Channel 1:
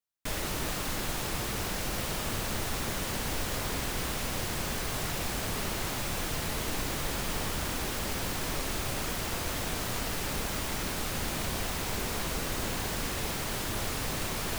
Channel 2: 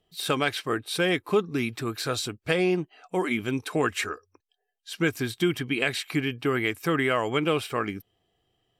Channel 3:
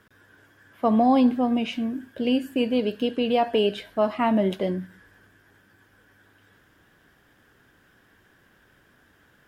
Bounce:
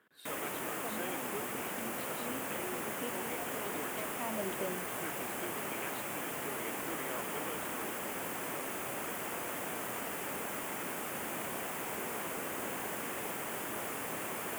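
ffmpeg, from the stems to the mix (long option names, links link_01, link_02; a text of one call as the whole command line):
ffmpeg -i stem1.wav -i stem2.wav -i stem3.wav -filter_complex "[0:a]equalizer=frequency=4000:width=2.8:gain=-12.5,volume=-2.5dB[link_01];[1:a]volume=-19.5dB,asplit=2[link_02][link_03];[2:a]acompressor=threshold=-23dB:ratio=6,volume=-9dB[link_04];[link_03]apad=whole_len=417639[link_05];[link_04][link_05]sidechaincompress=threshold=-52dB:ratio=8:attack=16:release=472[link_06];[link_01][link_02][link_06]amix=inputs=3:normalize=0,highpass=260,equalizer=frequency=5400:width=1.7:gain=-9.5" out.wav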